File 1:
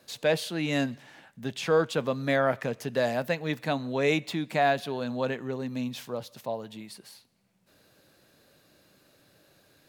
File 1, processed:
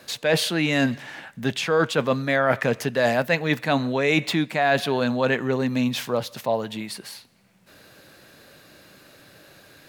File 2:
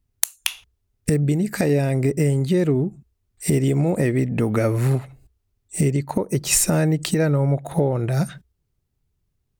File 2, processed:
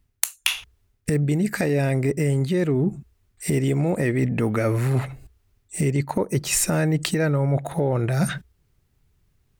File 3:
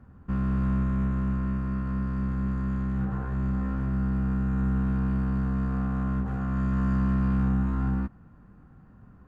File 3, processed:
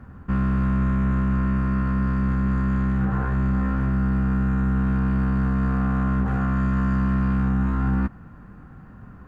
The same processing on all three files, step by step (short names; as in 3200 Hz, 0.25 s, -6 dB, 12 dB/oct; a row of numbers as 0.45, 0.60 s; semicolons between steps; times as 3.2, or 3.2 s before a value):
bell 1800 Hz +4.5 dB 1.6 oct; reverse; compressor 6:1, threshold -27 dBFS; reverse; match loudness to -23 LUFS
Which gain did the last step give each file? +10.0, +7.5, +8.5 dB